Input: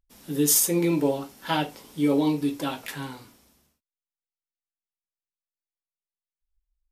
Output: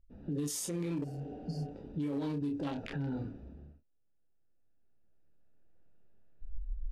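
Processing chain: local Wiener filter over 41 samples; recorder AGC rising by 8.3 dB/s; low-pass 9 kHz 12 dB/octave; bass shelf 100 Hz +9.5 dB; doubling 28 ms -9 dB; level-controlled noise filter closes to 2.7 kHz, open at -18 dBFS; compression 4:1, threshold -29 dBFS, peak gain reduction 11.5 dB; spectral replace 1.06–1.66 s, 240–4300 Hz after; peak limiter -30.5 dBFS, peak gain reduction 11 dB; trim +2 dB

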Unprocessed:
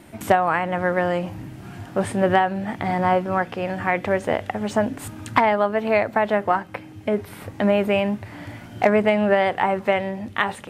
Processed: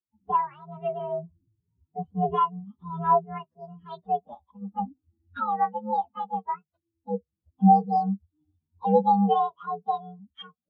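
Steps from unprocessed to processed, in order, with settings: frequency axis rescaled in octaves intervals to 128%; spectral contrast expander 2.5:1

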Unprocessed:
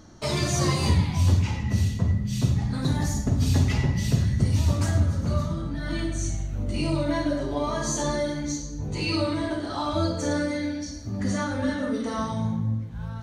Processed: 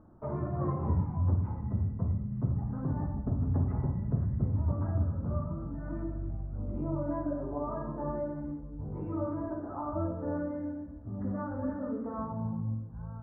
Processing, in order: steep low-pass 1.3 kHz 36 dB/octave; trim -7.5 dB

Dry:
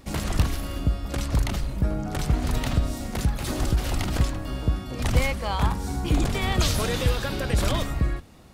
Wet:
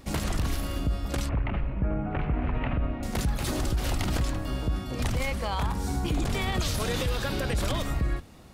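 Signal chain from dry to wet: 1.29–3.03 s: Chebyshev low-pass 2.6 kHz, order 4; peak limiter -19 dBFS, peak gain reduction 10.5 dB

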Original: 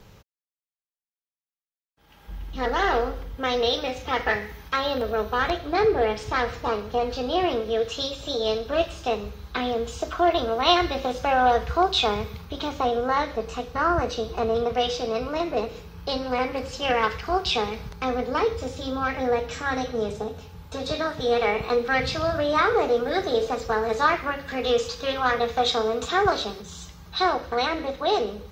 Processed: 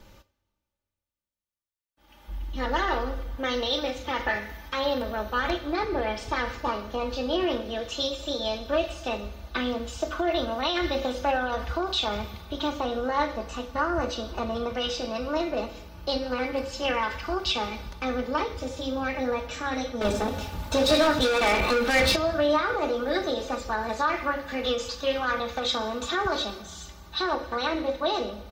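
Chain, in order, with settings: two-slope reverb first 0.38 s, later 2.8 s, from -18 dB, DRR 11 dB; peak limiter -14.5 dBFS, peak gain reduction 10 dB; 20.01–22.16 s: waveshaping leveller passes 3; comb 3.4 ms, depth 74%; trim -3 dB

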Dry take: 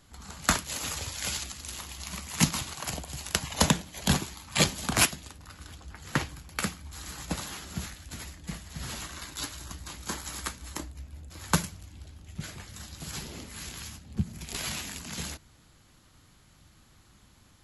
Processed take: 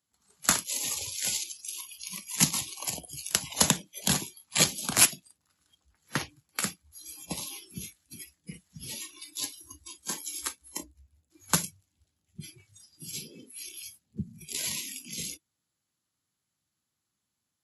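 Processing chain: spectral noise reduction 23 dB; high-pass 120 Hz 12 dB/octave; treble shelf 4.8 kHz +11 dB; trim -3.5 dB

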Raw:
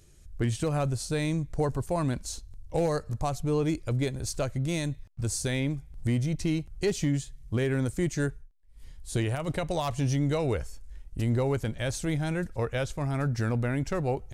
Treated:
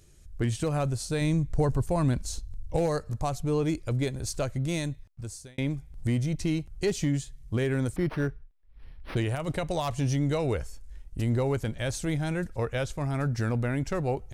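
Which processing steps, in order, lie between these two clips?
1.21–2.77 s: bass shelf 170 Hz +7.5 dB; 4.79–5.58 s: fade out; 7.96–9.17 s: decimation joined by straight lines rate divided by 6×

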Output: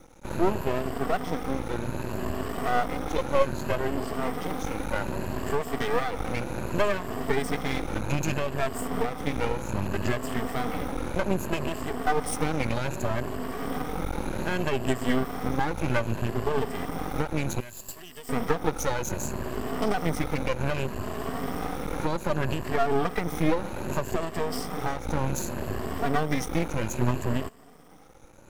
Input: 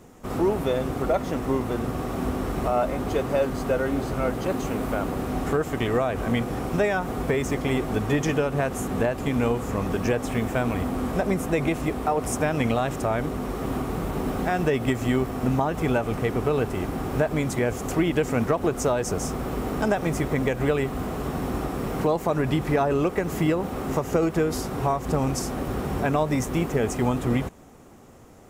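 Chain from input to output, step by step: drifting ripple filter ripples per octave 1.4, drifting +0.64 Hz, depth 23 dB; 17.60–18.29 s: pre-emphasis filter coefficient 0.9; half-wave rectifier; trim -4 dB

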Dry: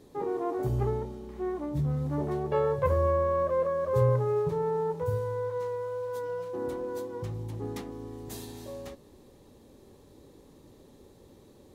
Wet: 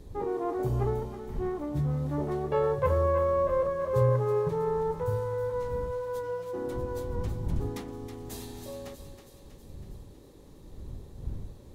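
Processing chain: wind noise 88 Hz -41 dBFS; thinning echo 321 ms, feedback 61%, high-pass 910 Hz, level -8 dB

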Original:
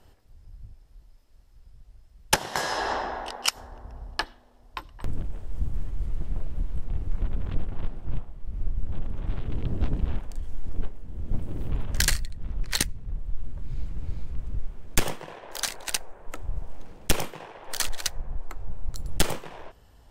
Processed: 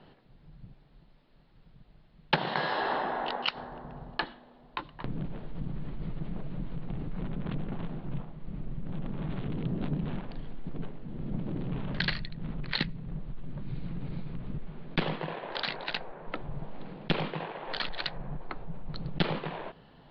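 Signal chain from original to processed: steep low-pass 4.4 kHz 72 dB/octave; resonant low shelf 110 Hz -11.5 dB, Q 3; in parallel at -1 dB: compressor with a negative ratio -37 dBFS, ratio -1; on the sum: trim -3.5 dB

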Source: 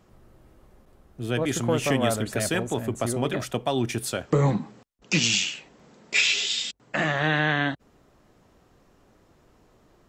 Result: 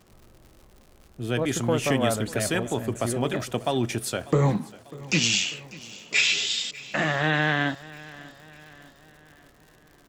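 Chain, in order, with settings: crackle 140 per s -42 dBFS; on a send: feedback delay 594 ms, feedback 51%, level -20 dB

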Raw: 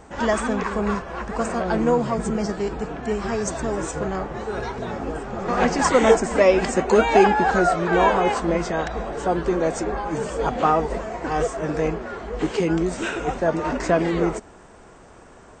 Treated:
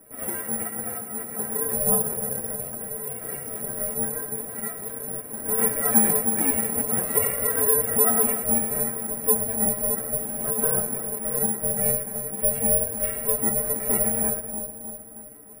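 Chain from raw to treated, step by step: treble shelf 7.7 kHz -9 dB; hum notches 50/100/150/200/250/300/350/400/450/500 Hz; inharmonic resonator 150 Hz, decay 0.31 s, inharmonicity 0.03; two-band feedback delay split 760 Hz, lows 312 ms, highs 107 ms, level -10 dB; ring modulator 290 Hz; graphic EQ 125/250/500/1000/2000/4000 Hz +5/+9/+9/-4/+6/-5 dB; careless resampling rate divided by 4×, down filtered, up zero stuff; in parallel at 0 dB: peak limiter -7.5 dBFS, peak gain reduction 10 dB; on the sum: trim -6 dB

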